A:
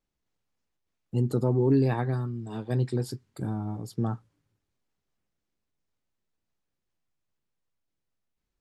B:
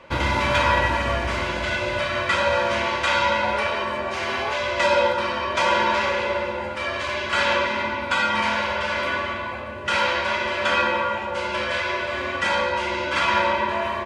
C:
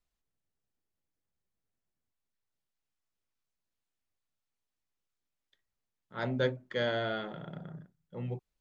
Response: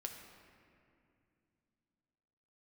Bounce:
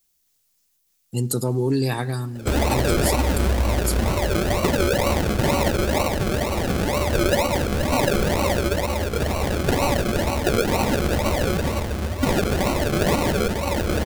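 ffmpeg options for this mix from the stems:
-filter_complex "[0:a]highshelf=frequency=3400:gain=9,crystalizer=i=4.5:c=0,volume=0dB,asplit=2[link_01][link_02];[link_02]volume=-11dB[link_03];[1:a]aecho=1:1:3.5:0.74,asubboost=boost=7:cutoff=130,acrusher=samples=37:mix=1:aa=0.000001:lfo=1:lforange=22.2:lforate=2.1,adelay=2350,volume=1.5dB[link_04];[3:a]atrim=start_sample=2205[link_05];[link_03][link_05]afir=irnorm=-1:irlink=0[link_06];[link_01][link_04][link_06]amix=inputs=3:normalize=0,acompressor=threshold=-16dB:ratio=6"

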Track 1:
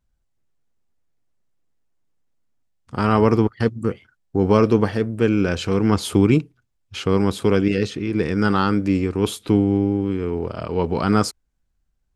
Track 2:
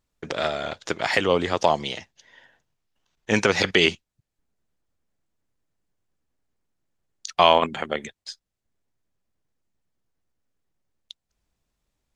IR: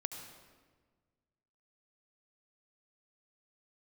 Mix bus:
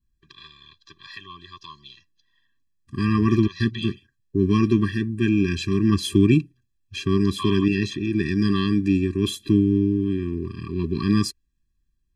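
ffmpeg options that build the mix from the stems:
-filter_complex "[0:a]adynamicequalizer=threshold=0.0141:dfrequency=3200:dqfactor=0.83:tfrequency=3200:tqfactor=0.83:attack=5:release=100:ratio=0.375:range=2:mode=boostabove:tftype=bell,volume=-0.5dB[link_01];[1:a]equalizer=frequency=250:width_type=o:width=1:gain=-12,equalizer=frequency=500:width_type=o:width=1:gain=-9,equalizer=frequency=1000:width_type=o:width=1:gain=12,equalizer=frequency=2000:width_type=o:width=1:gain=-8,equalizer=frequency=4000:width_type=o:width=1:gain=12,equalizer=frequency=8000:width_type=o:width=1:gain=-12,volume=-13.5dB[link_02];[link_01][link_02]amix=inputs=2:normalize=0,asuperstop=centerf=790:order=8:qfactor=1.4,afftfilt=real='re*eq(mod(floor(b*sr/1024/390),2),0)':imag='im*eq(mod(floor(b*sr/1024/390),2),0)':win_size=1024:overlap=0.75"

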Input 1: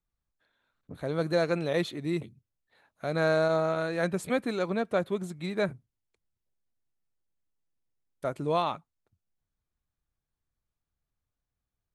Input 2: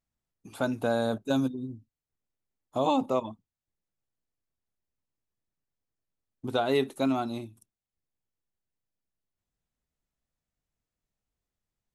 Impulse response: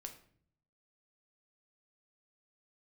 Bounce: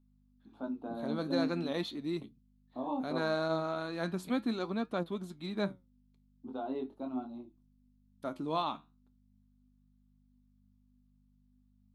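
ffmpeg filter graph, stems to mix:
-filter_complex "[0:a]lowshelf=frequency=230:gain=-8.5,aeval=exprs='val(0)+0.000708*(sin(2*PI*50*n/s)+sin(2*PI*2*50*n/s)/2+sin(2*PI*3*50*n/s)/3+sin(2*PI*4*50*n/s)/4+sin(2*PI*5*50*n/s)/5)':channel_layout=same,volume=1dB[link_01];[1:a]bandpass=frequency=560:width_type=q:width=0.87:csg=0,flanger=delay=18:depth=6.5:speed=0.2,volume=-2dB[link_02];[link_01][link_02]amix=inputs=2:normalize=0,equalizer=frequency=125:width_type=o:width=1:gain=-5,equalizer=frequency=250:width_type=o:width=1:gain=11,equalizer=frequency=500:width_type=o:width=1:gain=-8,equalizer=frequency=1000:width_type=o:width=1:gain=3,equalizer=frequency=2000:width_type=o:width=1:gain=-8,equalizer=frequency=4000:width_type=o:width=1:gain=5,equalizer=frequency=8000:width_type=o:width=1:gain=-9,flanger=delay=5.6:depth=8.4:regen=73:speed=0.4:shape=triangular"

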